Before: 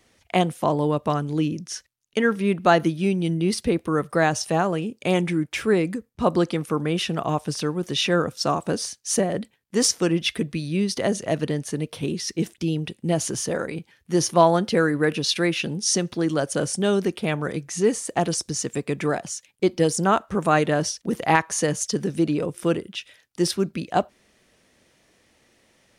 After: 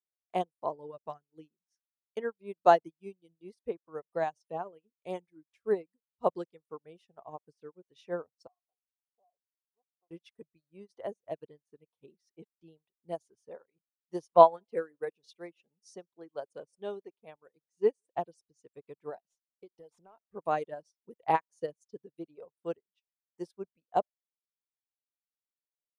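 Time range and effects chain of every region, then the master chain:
0:08.47–0:10.11: formant resonators in series a + downward compressor 12 to 1, threshold −34 dBFS
0:14.34–0:18.15: low-shelf EQ 88 Hz −10.5 dB + single-tap delay 170 ms −23 dB
0:19.24–0:20.32: variable-slope delta modulation 64 kbit/s + downward compressor 16 to 1, threshold −22 dBFS
whole clip: reverb reduction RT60 1.8 s; flat-topped bell 630 Hz +9.5 dB; expander for the loud parts 2.5 to 1, over −35 dBFS; level −8 dB

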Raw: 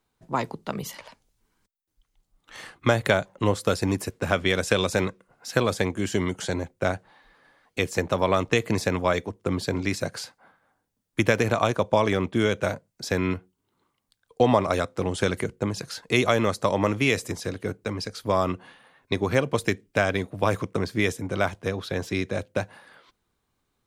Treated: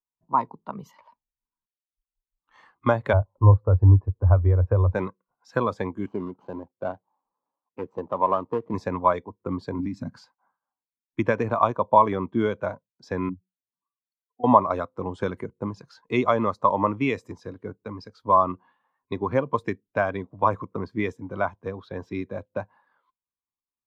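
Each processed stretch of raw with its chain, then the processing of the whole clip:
0:03.13–0:04.95: low-pass filter 1,000 Hz + low shelf with overshoot 120 Hz +9 dB, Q 3
0:06.06–0:08.74: running median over 25 samples + high-pass filter 170 Hz 6 dB per octave
0:09.79–0:10.22: low shelf with overshoot 320 Hz +6.5 dB, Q 3 + downward compressor 12 to 1, threshold −22 dBFS
0:13.29–0:14.44: expanding power law on the bin magnitudes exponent 2.9 + high-pass filter 110 Hz + phaser with its sweep stopped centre 2,500 Hz, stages 8
whole clip: graphic EQ with 15 bands 250 Hz +3 dB, 1,000 Hz +11 dB, 10,000 Hz −8 dB; every bin expanded away from the loudest bin 1.5 to 1; level −1 dB

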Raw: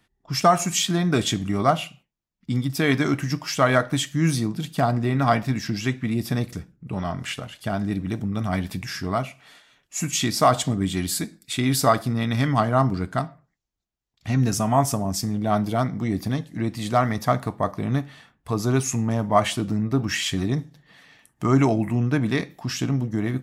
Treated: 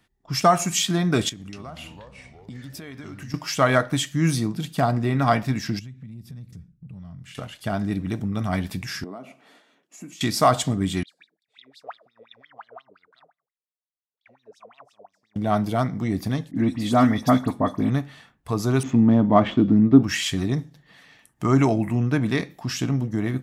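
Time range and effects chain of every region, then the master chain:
0:01.29–0:03.34: downward compressor 16 to 1, threshold −34 dBFS + delay with pitch and tempo change per echo 239 ms, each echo −4 semitones, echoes 3, each echo −6 dB
0:05.79–0:07.35: drawn EQ curve 170 Hz 0 dB, 340 Hz −15 dB, 740 Hz −19 dB, 3,800 Hz −14 dB + downward compressor 5 to 1, threshold −37 dBFS
0:09.04–0:10.21: downward compressor, threshold −35 dBFS + high-pass filter 230 Hz 24 dB per octave + tilt shelving filter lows +8.5 dB, about 820 Hz
0:11.03–0:15.36: hard clipping −13.5 dBFS + downward compressor 1.5 to 1, threshold −31 dBFS + LFO wah 5.7 Hz 430–4,000 Hz, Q 21
0:16.51–0:17.90: hollow resonant body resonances 260/3,400 Hz, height 14 dB, ringing for 85 ms + all-pass dispersion highs, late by 58 ms, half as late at 2,900 Hz
0:18.83–0:20.03: running median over 9 samples + high-frequency loss of the air 180 metres + hollow resonant body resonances 260/3,400 Hz, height 12 dB, ringing for 20 ms
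whole clip: no processing

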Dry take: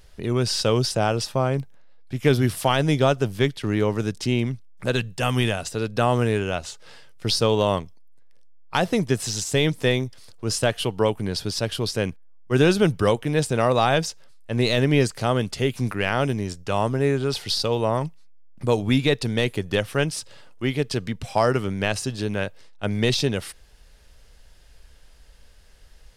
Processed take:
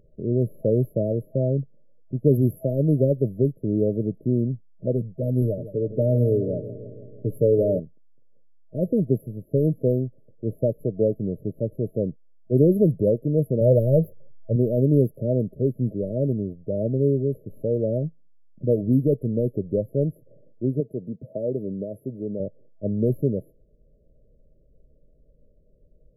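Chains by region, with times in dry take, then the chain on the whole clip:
0:05.41–0:07.80: comb filter 6.9 ms, depth 47% + feedback echo with a low-pass in the loop 163 ms, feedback 64%, level −13 dB
0:13.61–0:14.56: running median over 9 samples + low-shelf EQ 190 Hz +8.5 dB + comb filter 1.9 ms, depth 43%
0:20.80–0:22.40: meter weighting curve D + downward compressor 1.5 to 1, threshold −24 dBFS
whole clip: low-pass that shuts in the quiet parts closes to 2,100 Hz, open at −15 dBFS; brick-wall band-stop 650–11,000 Hz; low shelf with overshoot 100 Hz −6.5 dB, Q 1.5

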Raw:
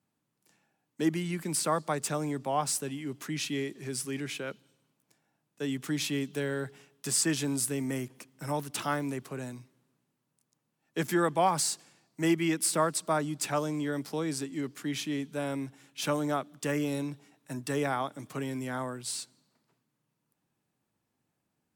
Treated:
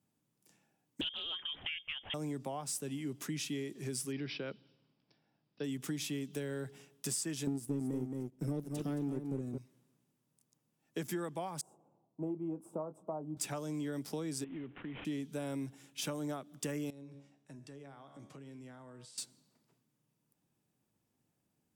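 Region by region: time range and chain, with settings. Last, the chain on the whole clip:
0:01.01–0:02.14: voice inversion scrambler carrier 3,400 Hz + highs frequency-modulated by the lows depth 0.31 ms
0:04.12–0:05.64: low-pass filter 8,100 Hz 24 dB per octave + bad sample-rate conversion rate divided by 4×, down none, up filtered
0:07.47–0:09.58: low shelf with overshoot 570 Hz +13 dB, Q 1.5 + power curve on the samples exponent 1.4 + single-tap delay 221 ms −8 dB
0:11.61–0:13.37: inverse Chebyshev low-pass filter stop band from 1,700 Hz + tilt shelving filter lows −8 dB, about 670 Hz + double-tracking delay 26 ms −12.5 dB
0:14.44–0:15.05: variable-slope delta modulation 16 kbit/s + downward compressor 10 to 1, threshold −39 dBFS
0:16.90–0:19.18: tuned comb filter 70 Hz, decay 0.62 s + downward compressor 8 to 1, threshold −47 dBFS + high-frequency loss of the air 67 metres
whole clip: downward compressor 6 to 1, threshold −35 dBFS; parametric band 1,400 Hz −6 dB 2.3 octaves; notch filter 4,200 Hz, Q 16; level +1 dB

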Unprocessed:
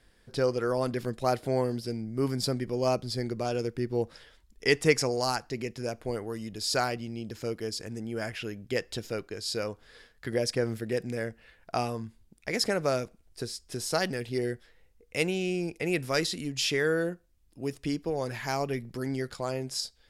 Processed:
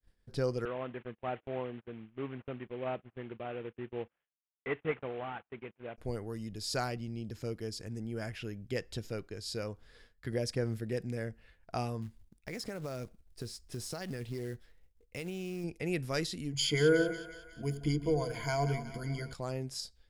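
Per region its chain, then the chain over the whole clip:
0:00.65–0:05.98: variable-slope delta modulation 16 kbit/s + high-pass filter 510 Hz 6 dB per octave + noise gate −45 dBFS, range −25 dB
0:12.02–0:15.64: downward compressor 5 to 1, threshold −30 dBFS + floating-point word with a short mantissa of 2 bits
0:16.52–0:19.33: EQ curve with evenly spaced ripples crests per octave 1.8, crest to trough 18 dB + echo with a time of its own for lows and highs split 690 Hz, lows 85 ms, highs 183 ms, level −11 dB
whole clip: downward expander −54 dBFS; low-shelf EQ 170 Hz +11 dB; level −7.5 dB

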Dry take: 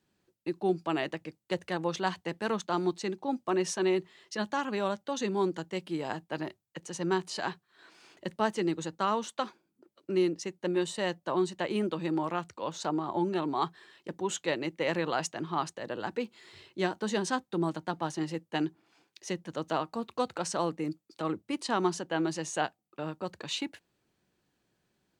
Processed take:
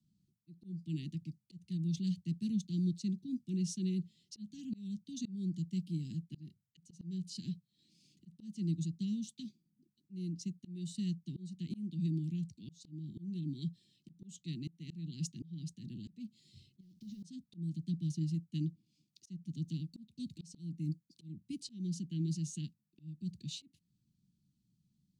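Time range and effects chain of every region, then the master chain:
0:16.80–0:17.23: variable-slope delta modulation 32 kbit/s + log-companded quantiser 6 bits + downward compressor 10 to 1, threshold −42 dBFS
whole clip: inverse Chebyshev band-stop filter 530–1,500 Hz, stop band 70 dB; three-way crossover with the lows and the highs turned down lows −14 dB, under 170 Hz, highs −22 dB, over 2,100 Hz; volume swells 316 ms; level +13.5 dB

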